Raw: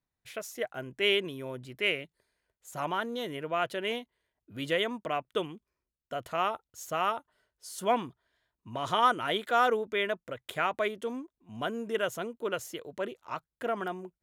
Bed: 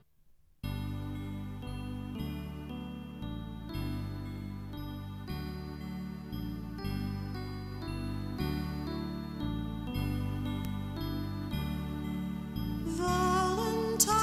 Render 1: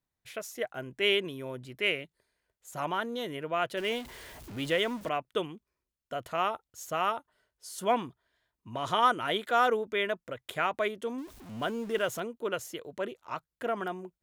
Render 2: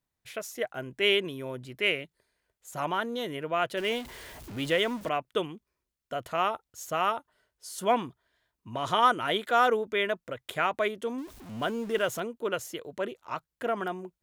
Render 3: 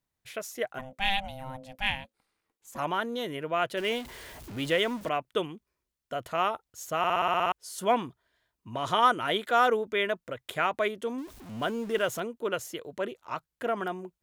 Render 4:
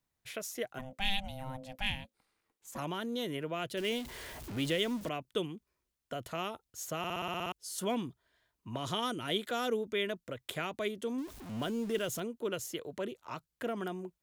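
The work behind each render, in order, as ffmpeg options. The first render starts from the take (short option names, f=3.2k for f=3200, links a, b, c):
-filter_complex "[0:a]asettb=1/sr,asplit=3[a][b][c];[a]atrim=end=3.774[d];[b]atrim=start=3.77:end=5.09,asetpts=PTS-STARTPTS,afade=t=in:d=0.004:c=qsin,afade=t=out:st=1.316:d=0.004:c=qsin,aeval=exprs='val(0)+0.5*0.00944*sgn(val(0))':c=same[e];[c]atrim=start=5.086[f];[d][e]acrossfade=d=0.004:c1=hsin:c2=qsin[g];[g][f]acrossfade=d=0.004:c1=qsin:c2=hsin,asettb=1/sr,asplit=3[h][i][j];[h]atrim=end=11.184[k];[i]atrim=start=11.18:end=12.2,asetpts=PTS-STARTPTS,afade=t=in:d=0.004:c=qsin,afade=t=out:st=1.016:d=0.004:c=qsin,aeval=exprs='val(0)+0.5*0.00631*sgn(val(0))':c=same[l];[j]atrim=start=12.196[m];[k][l]acrossfade=d=0.004:c1=hsin:c2=qsin[n];[n][m]acrossfade=d=0.004:c1=qsin:c2=hsin"
-af "volume=2dB"
-filter_complex "[0:a]asplit=3[a][b][c];[a]afade=t=out:st=0.78:d=0.02[d];[b]aeval=exprs='val(0)*sin(2*PI*390*n/s)':c=same,afade=t=in:st=0.78:d=0.02,afade=t=out:st=2.77:d=0.02[e];[c]afade=t=in:st=2.77:d=0.02[f];[d][e][f]amix=inputs=3:normalize=0,asplit=10[g][h][i][j][k][l][m][n][o][p];[g]atrim=end=7.042[q];[h]atrim=start=6.978:end=7.042[r];[i]atrim=start=6.978:end=7.042[s];[j]atrim=start=6.978:end=7.042[t];[k]atrim=start=6.978:end=7.042[u];[l]atrim=start=6.978:end=7.042[v];[m]atrim=start=6.978:end=7.042[w];[n]atrim=start=6.978:end=7.042[x];[o]atrim=start=6.978:end=7.042[y];[p]atrim=start=7.518[z];[q][r]acrossfade=d=0.004:c1=hsin:c2=hsin[aa];[aa][s]acrossfade=d=0.004:c1=hsin:c2=hsin[ab];[ab][t]acrossfade=d=0.004:c1=hsin:c2=hsin[ac];[ac][u]acrossfade=d=0.004:c1=hsin:c2=hsin[ad];[ad][v]acrossfade=d=0.004:c1=hsin:c2=hsin[ae];[ae][w]acrossfade=d=0.004:c1=hsin:c2=hsin[af];[af][x]acrossfade=d=0.004:c1=hsin:c2=hsin[ag];[ag][y]acrossfade=d=0.004:c1=hsin:c2=hsin[ah];[ah][z]acrossfade=d=0.004:c1=hsin:c2=hsin"
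-filter_complex "[0:a]acrossover=split=390|3000[a][b][c];[b]acompressor=threshold=-43dB:ratio=3[d];[a][d][c]amix=inputs=3:normalize=0"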